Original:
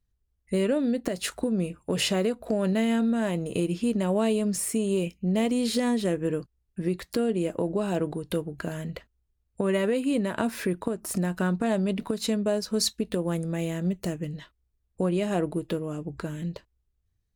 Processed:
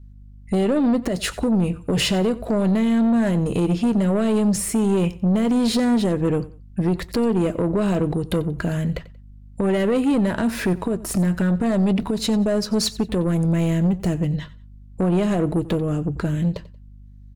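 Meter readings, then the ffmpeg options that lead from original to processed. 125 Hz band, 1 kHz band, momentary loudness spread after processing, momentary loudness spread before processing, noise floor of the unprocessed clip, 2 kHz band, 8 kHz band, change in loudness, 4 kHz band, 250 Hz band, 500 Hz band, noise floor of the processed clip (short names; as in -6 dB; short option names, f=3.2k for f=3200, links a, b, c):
+9.5 dB, +5.5 dB, 6 LU, 9 LU, -75 dBFS, +4.0 dB, +3.0 dB, +6.5 dB, +4.5 dB, +7.5 dB, +4.0 dB, -43 dBFS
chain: -filter_complex "[0:a]aeval=exprs='val(0)+0.00126*(sin(2*PI*50*n/s)+sin(2*PI*2*50*n/s)/2+sin(2*PI*3*50*n/s)/3+sin(2*PI*4*50*n/s)/4+sin(2*PI*5*50*n/s)/5)':c=same,lowshelf=f=170:g=9.5,alimiter=limit=-15.5dB:level=0:latency=1:release=71,asoftclip=type=tanh:threshold=-23dB,highshelf=f=7.4k:g=-5.5,asplit=2[a][b];[b]aecho=0:1:91|182:0.112|0.0303[c];[a][c]amix=inputs=2:normalize=0,volume=8.5dB"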